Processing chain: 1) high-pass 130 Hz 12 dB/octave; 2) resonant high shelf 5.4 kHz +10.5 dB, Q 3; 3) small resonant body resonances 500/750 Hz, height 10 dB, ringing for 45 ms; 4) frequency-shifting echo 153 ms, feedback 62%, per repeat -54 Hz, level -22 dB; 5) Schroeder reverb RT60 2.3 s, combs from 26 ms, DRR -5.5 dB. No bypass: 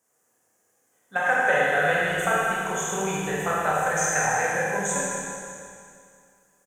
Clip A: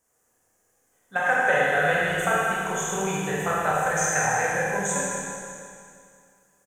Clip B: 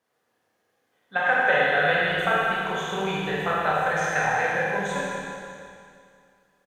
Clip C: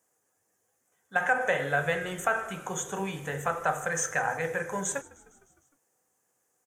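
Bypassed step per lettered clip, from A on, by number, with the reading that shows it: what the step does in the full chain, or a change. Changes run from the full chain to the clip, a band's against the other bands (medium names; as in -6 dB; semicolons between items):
1, 125 Hz band +1.5 dB; 2, 8 kHz band -14.5 dB; 5, momentary loudness spread change -4 LU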